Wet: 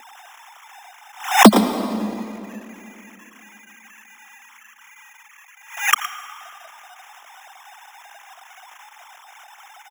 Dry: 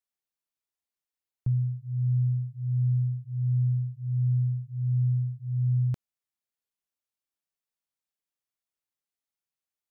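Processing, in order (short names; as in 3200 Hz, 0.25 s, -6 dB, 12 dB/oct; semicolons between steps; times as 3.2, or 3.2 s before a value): sine-wave speech; steep high-pass 210 Hz 96 dB/oct; tilt -4 dB/oct; in parallel at 0 dB: level quantiser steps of 17 dB; on the sum: sample-and-hold 10×; soft clip -8 dBFS, distortion -7 dB; echo 0.114 s -14 dB; on a send at -12 dB: reverb RT60 2.7 s, pre-delay 76 ms; on the sum: maximiser +12.5 dB; backwards sustainer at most 130 dB/s; gain -1.5 dB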